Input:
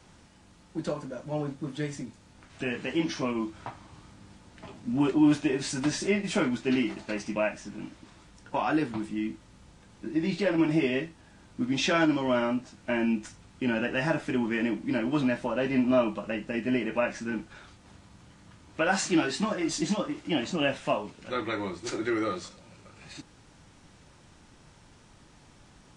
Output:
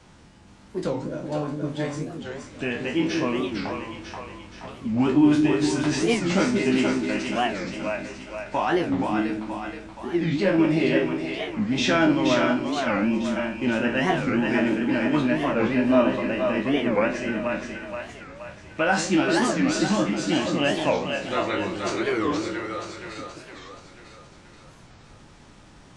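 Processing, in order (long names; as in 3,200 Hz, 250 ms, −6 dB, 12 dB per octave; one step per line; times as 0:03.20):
peak hold with a decay on every bin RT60 0.33 s
high-shelf EQ 7,500 Hz −7.5 dB
echo with a time of its own for lows and highs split 440 Hz, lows 179 ms, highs 475 ms, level −4 dB
wow of a warped record 45 rpm, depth 250 cents
level +3 dB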